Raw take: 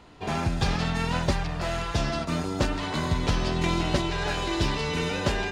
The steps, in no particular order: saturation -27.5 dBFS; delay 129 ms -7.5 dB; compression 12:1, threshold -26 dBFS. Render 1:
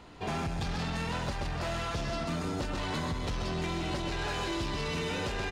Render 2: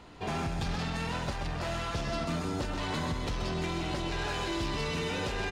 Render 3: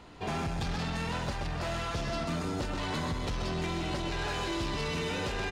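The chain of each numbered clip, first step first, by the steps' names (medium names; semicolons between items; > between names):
delay > compression > saturation; compression > saturation > delay; compression > delay > saturation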